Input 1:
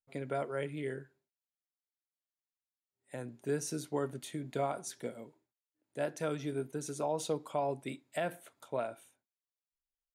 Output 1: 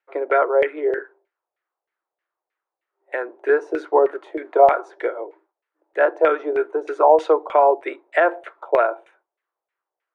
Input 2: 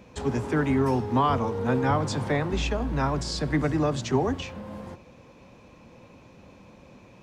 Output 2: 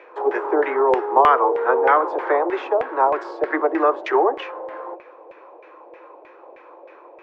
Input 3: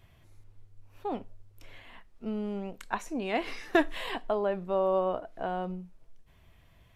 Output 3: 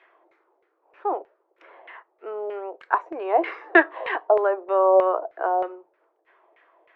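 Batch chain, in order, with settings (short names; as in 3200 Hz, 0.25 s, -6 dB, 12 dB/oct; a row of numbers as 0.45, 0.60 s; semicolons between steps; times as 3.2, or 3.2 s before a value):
Chebyshev high-pass 330 Hz, order 6; LFO low-pass saw down 3.2 Hz 630–2100 Hz; normalise peaks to -2 dBFS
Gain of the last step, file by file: +17.0, +7.5, +7.0 dB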